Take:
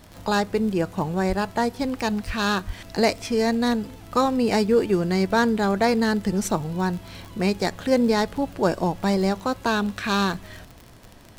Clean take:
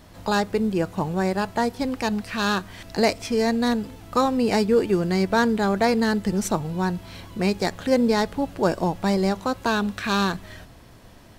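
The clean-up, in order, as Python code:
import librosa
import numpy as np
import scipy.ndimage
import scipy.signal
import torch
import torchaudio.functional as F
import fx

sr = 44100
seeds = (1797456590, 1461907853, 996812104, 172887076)

y = fx.fix_declick_ar(x, sr, threshold=6.5)
y = fx.highpass(y, sr, hz=140.0, slope=24, at=(1.28, 1.4), fade=0.02)
y = fx.highpass(y, sr, hz=140.0, slope=24, at=(2.26, 2.38), fade=0.02)
y = fx.highpass(y, sr, hz=140.0, slope=24, at=(2.66, 2.78), fade=0.02)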